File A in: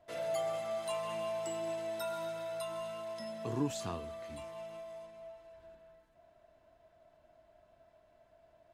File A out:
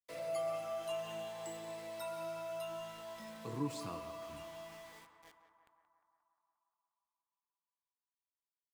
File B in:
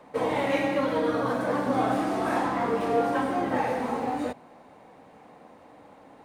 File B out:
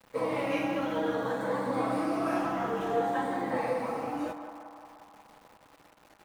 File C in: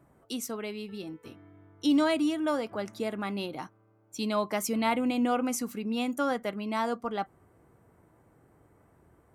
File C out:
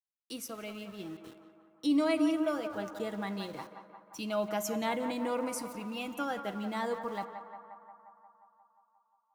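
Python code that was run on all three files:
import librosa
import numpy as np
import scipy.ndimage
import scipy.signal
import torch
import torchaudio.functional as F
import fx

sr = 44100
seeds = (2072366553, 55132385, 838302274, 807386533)

p1 = fx.spec_ripple(x, sr, per_octave=0.97, drift_hz=0.56, depth_db=7)
p2 = p1 + 0.36 * np.pad(p1, (int(6.1 * sr / 1000.0), 0))[:len(p1)]
p3 = np.where(np.abs(p2) >= 10.0 ** (-45.0 / 20.0), p2, 0.0)
p4 = p3 + fx.echo_banded(p3, sr, ms=177, feedback_pct=75, hz=1000.0, wet_db=-8.0, dry=0)
p5 = fx.rev_fdn(p4, sr, rt60_s=2.2, lf_ratio=1.1, hf_ratio=0.5, size_ms=29.0, drr_db=15.0)
y = F.gain(torch.from_numpy(p5), -6.0).numpy()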